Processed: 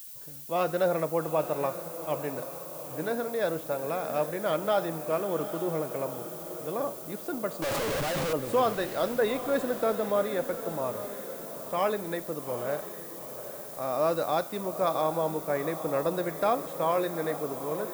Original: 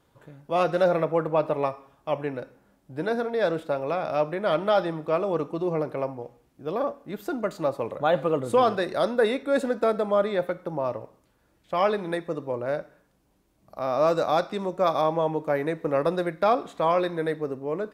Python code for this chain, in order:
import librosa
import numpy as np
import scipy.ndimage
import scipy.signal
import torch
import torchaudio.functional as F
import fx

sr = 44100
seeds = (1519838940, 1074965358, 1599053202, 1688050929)

y = fx.clip_1bit(x, sr, at=(7.62, 8.33))
y = fx.dmg_noise_colour(y, sr, seeds[0], colour='violet', level_db=-40.0)
y = fx.echo_diffused(y, sr, ms=829, feedback_pct=52, wet_db=-11)
y = F.gain(torch.from_numpy(y), -4.5).numpy()